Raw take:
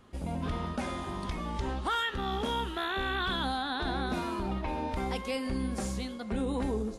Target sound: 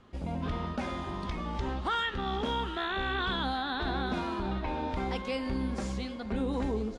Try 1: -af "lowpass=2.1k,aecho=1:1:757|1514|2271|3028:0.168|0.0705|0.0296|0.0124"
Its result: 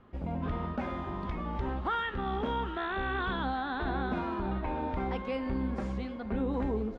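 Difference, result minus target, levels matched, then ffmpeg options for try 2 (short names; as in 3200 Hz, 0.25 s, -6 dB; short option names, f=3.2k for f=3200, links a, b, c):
4000 Hz band -8.0 dB
-af "lowpass=5.5k,aecho=1:1:757|1514|2271|3028:0.168|0.0705|0.0296|0.0124"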